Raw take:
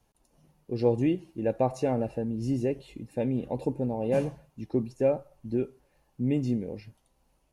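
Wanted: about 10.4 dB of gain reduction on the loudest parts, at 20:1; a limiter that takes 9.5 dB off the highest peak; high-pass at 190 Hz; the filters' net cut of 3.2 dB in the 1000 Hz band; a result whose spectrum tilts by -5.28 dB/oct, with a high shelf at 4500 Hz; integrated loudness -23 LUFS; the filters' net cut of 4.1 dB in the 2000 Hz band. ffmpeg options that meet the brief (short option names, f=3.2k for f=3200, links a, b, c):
-af "highpass=190,equalizer=f=1k:t=o:g=-4,equalizer=f=2k:t=o:g=-3.5,highshelf=f=4.5k:g=-4,acompressor=threshold=-30dB:ratio=20,volume=18dB,alimiter=limit=-12dB:level=0:latency=1"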